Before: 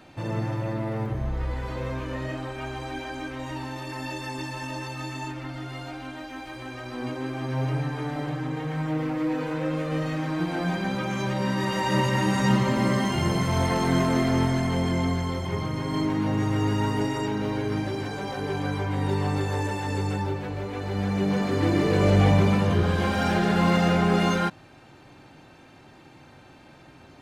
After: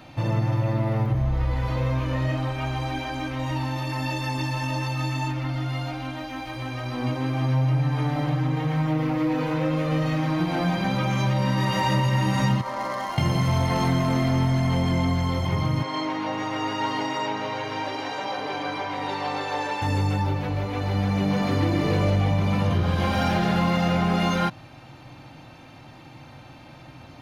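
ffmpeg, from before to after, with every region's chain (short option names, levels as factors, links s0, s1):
-filter_complex "[0:a]asettb=1/sr,asplit=3[s0][s1][s2];[s0]atrim=end=12.614[s3];[s1]atrim=start=12.61:end=13.18,asetpts=PTS-STARTPTS,afade=t=in:d=0.004:c=qsin,afade=t=out:st=0.566:d=0.004:c=qsin,highpass=730,lowpass=6300,adynamicsmooth=sensitivity=6:basefreq=1200,equalizer=f=2700:t=o:w=1.1:g=-11[s4];[s2]atrim=start=13.176[s5];[s3][s4]acrossfade=d=0.004:c1=hsin:c2=qsin[s6];[s6][s5]acrossfade=d=0.004:c1=qsin:c2=hsin,asettb=1/sr,asplit=3[s7][s8][s9];[s7]atrim=end=15.834[s10];[s8]atrim=start=15.83:end=19.82,asetpts=PTS-STARTPTS,afade=t=in:d=0.004:c=qsin,afade=t=out:st=3.986:d=0.004:c=qsin,highpass=100,acrossover=split=350 6900:gain=0.0891 1 0.2[s11][s12][s13];[s11][s12][s13]amix=inputs=3:normalize=0,aecho=1:1:973:0.398,atrim=end_sample=175959[s14];[s9]atrim=start=19.816[s15];[s10][s14]acrossfade=d=0.004:c1=hsin:c2=qsin[s16];[s16][s15]acrossfade=d=0.004:c1=qsin:c2=hsin,equalizer=f=125:t=o:w=0.33:g=6,equalizer=f=200:t=o:w=0.33:g=-3,equalizer=f=400:t=o:w=0.33:g=-10,equalizer=f=1600:t=o:w=0.33:g=-5,equalizer=f=8000:t=o:w=0.33:g=-10,acompressor=threshold=0.0631:ratio=6,volume=1.88"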